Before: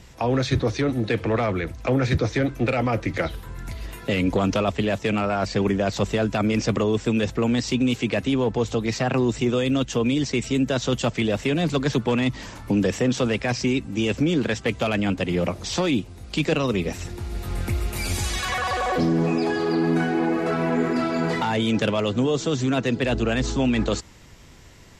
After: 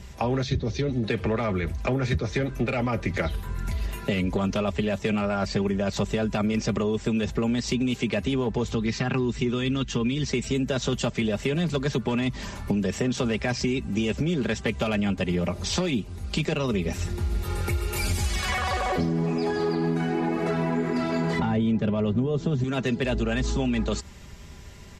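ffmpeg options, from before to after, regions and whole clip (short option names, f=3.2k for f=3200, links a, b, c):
-filter_complex "[0:a]asettb=1/sr,asplit=3[a][b][c];[a]atrim=end=0.434[d];[b]atrim=start=0.43:end=1.03,asetpts=PTS-STARTPTS,afade=t=in:d=0.004:c=qsin,afade=t=out:st=0.596:d=0.004:c=qsin,lowpass=f=6.4k:w=0.5412,lowpass=f=6.4k:w=1.3066,equalizer=f=1.2k:t=o:w=1.9:g=-10[e];[c]atrim=start=1.026[f];[d][e]acrossfade=d=0.004:c1=hsin:c2=qsin[g];[g][f]acrossfade=d=0.004:c1=qsin:c2=hsin,asettb=1/sr,asplit=3[h][i][j];[h]atrim=end=8.714[k];[i]atrim=start=8.71:end=10.28,asetpts=PTS-STARTPTS,afade=t=in:d=0.004:c=qsin,afade=t=out:st=1.566:d=0.004:c=qsin,lowpass=5.9k,equalizer=f=630:t=o:w=0.76:g=-9[l];[j]atrim=start=10.276[m];[k][l]acrossfade=d=0.004:c1=hsin:c2=qsin[n];[n][m]acrossfade=d=0.004:c1=qsin:c2=hsin,asettb=1/sr,asplit=3[o][p][q];[o]atrim=end=17.444[r];[p]atrim=start=17.44:end=18.03,asetpts=PTS-STARTPTS,afade=t=in:d=0.004:c=qsin,afade=t=out:st=0.586:d=0.004:c=qsin,highpass=f=160:p=1,aecho=1:1:2.2:0.6,atrim=end_sample=26019[s];[q]atrim=start=18.026[t];[r][s]acrossfade=d=0.004:c1=hsin:c2=qsin[u];[u][t]acrossfade=d=0.004:c1=qsin:c2=hsin,asettb=1/sr,asplit=3[v][w][x];[v]atrim=end=21.394[y];[w]atrim=start=21.39:end=22.64,asetpts=PTS-STARTPTS,afade=t=in:d=0.004:c=qsin,afade=t=out:st=1.246:d=0.004:c=qsin,lowpass=f=2k:p=1,lowshelf=f=340:g=10.5[z];[x]atrim=start=22.636[aa];[y][z]acrossfade=d=0.004:c1=hsin:c2=qsin[ab];[ab][aa]acrossfade=d=0.004:c1=qsin:c2=hsin,equalizer=f=80:w=1.4:g=12,aecho=1:1:5:0.54,acompressor=threshold=-22dB:ratio=6"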